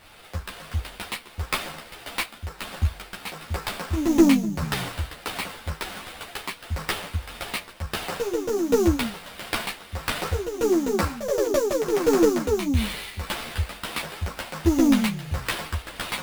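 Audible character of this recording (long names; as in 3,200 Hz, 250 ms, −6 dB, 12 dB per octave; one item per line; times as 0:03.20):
aliases and images of a low sample rate 6,600 Hz, jitter 20%
tremolo triangle 1.5 Hz, depth 55%
a shimmering, thickened sound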